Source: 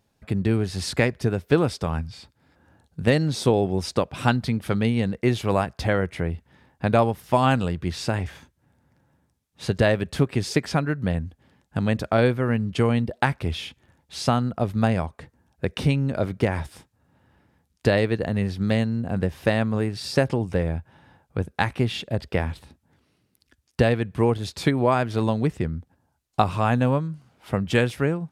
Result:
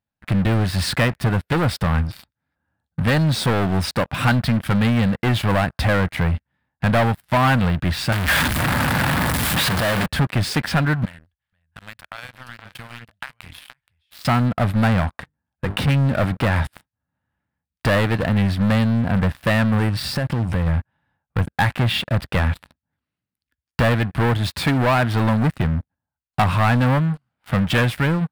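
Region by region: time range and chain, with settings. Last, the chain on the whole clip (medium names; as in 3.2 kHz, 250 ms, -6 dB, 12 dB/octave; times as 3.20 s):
8.12–10.06 s: one-bit comparator + bass shelf 77 Hz -10.5 dB
11.05–14.25 s: amplifier tone stack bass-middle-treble 10-0-10 + compression 3:1, threshold -43 dBFS + delay 473 ms -8.5 dB
15.18–15.88 s: high-pass 49 Hz + hum notches 50/100/150/200/250/300/350/400/450 Hz + transformer saturation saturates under 520 Hz
19.89–20.67 s: bass shelf 160 Hz +7.5 dB + compression 3:1, threshold -28 dBFS
whole clip: treble shelf 9.2 kHz -5 dB; waveshaping leveller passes 5; fifteen-band graphic EQ 400 Hz -10 dB, 1.6 kHz +4 dB, 6.3 kHz -9 dB; trim -7.5 dB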